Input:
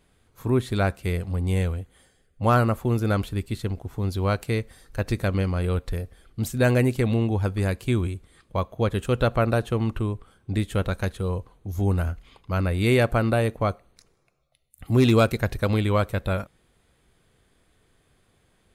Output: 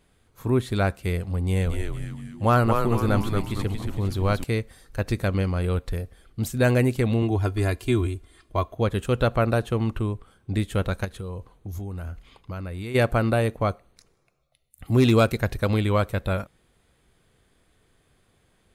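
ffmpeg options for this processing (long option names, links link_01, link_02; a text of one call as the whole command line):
ffmpeg -i in.wav -filter_complex "[0:a]asettb=1/sr,asplit=3[link_01][link_02][link_03];[link_01]atrim=end=1.424[link_04];[link_02]atrim=start=1.42:end=4.44,asetpts=PTS-STARTPTS,afade=type=in:duration=0.004:curve=qsin,afade=type=out:start_time=3.016:duration=0.004:curve=qsin,asplit=7[link_05][link_06][link_07][link_08][link_09][link_10][link_11];[link_06]adelay=229,afreqshift=-110,volume=-4dB[link_12];[link_07]adelay=458,afreqshift=-220,volume=-10.6dB[link_13];[link_08]adelay=687,afreqshift=-330,volume=-17.1dB[link_14];[link_09]adelay=916,afreqshift=-440,volume=-23.7dB[link_15];[link_10]adelay=1145,afreqshift=-550,volume=-30.2dB[link_16];[link_11]adelay=1374,afreqshift=-660,volume=-36.8dB[link_17];[link_05][link_12][link_13][link_14][link_15][link_16][link_17]amix=inputs=7:normalize=0,atrim=end_sample=133182[link_18];[link_03]atrim=start=4.436[link_19];[link_04][link_18]acrossfade=duration=0.004:curve1=hsin:curve2=qsin[link_20];[link_20][link_19]acrossfade=duration=0.004:curve1=qsin:curve2=hsin,asettb=1/sr,asplit=3[link_21][link_22][link_23];[link_21]atrim=end=7.224[link_24];[link_22]atrim=start=7.22:end=8.76,asetpts=PTS-STARTPTS,afade=type=in:duration=0.004:curve=qsin,afade=type=out:start_time=1.536:duration=0.004:curve=qsin,aecho=1:1:2.9:0.65,atrim=end_sample=67914[link_25];[link_23]atrim=start=8.756[link_26];[link_24][link_25]acrossfade=duration=0.004:curve1=hsin:curve2=qsin[link_27];[link_27][link_26]acrossfade=duration=0.004:curve1=qsin:curve2=hsin,asplit=3[link_28][link_29][link_30];[link_28]afade=type=out:start_time=11.04:duration=0.02[link_31];[link_29]acompressor=threshold=-29dB:ratio=10:attack=3.2:release=140:knee=1:detection=peak,afade=type=in:start_time=11.04:duration=0.02,afade=type=out:start_time=12.94:duration=0.02[link_32];[link_30]afade=type=in:start_time=12.94:duration=0.02[link_33];[link_31][link_32][link_33]amix=inputs=3:normalize=0" out.wav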